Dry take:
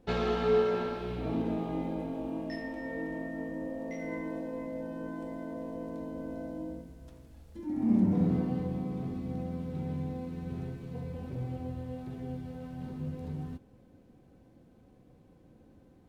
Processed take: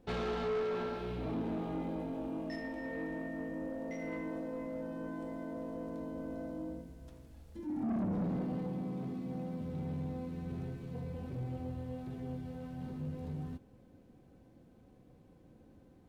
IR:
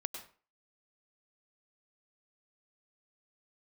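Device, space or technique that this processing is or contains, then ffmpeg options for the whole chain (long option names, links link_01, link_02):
saturation between pre-emphasis and de-emphasis: -filter_complex "[0:a]asettb=1/sr,asplit=3[link_01][link_02][link_03];[link_01]atrim=end=8.184[link_04];[link_02]atrim=start=8.18:end=9.61,asetpts=PTS-STARTPTS,afade=type=in:duration=0.004:curve=qsin,afade=type=out:start_time=1.426:duration=0.004:curve=qsin,highpass=frequency=130:width=0.5412,highpass=frequency=130:width=1.3066[link_05];[link_03]atrim=start=9.606[link_06];[link_04][link_05]acrossfade=duration=0.004:curve1=hsin:curve2=qsin[link_07];[link_07][link_06]acrossfade=duration=0.004:curve1=qsin:curve2=hsin,highshelf=frequency=3600:gain=10.5,asoftclip=type=tanh:threshold=-29.5dB,highshelf=frequency=3600:gain=-10.5,volume=-1.5dB"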